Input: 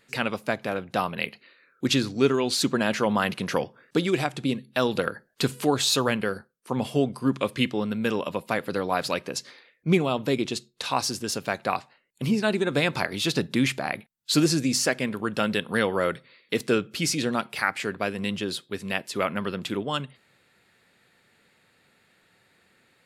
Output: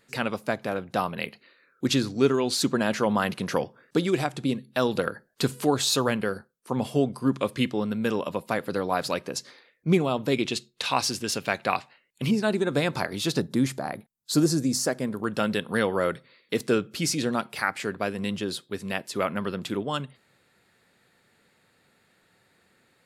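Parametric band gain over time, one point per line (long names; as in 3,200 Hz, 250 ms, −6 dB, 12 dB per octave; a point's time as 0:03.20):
parametric band 2,600 Hz 1.2 octaves
−4 dB
from 0:10.32 +4.5 dB
from 0:12.31 −6 dB
from 0:13.40 −14.5 dB
from 0:15.24 −4 dB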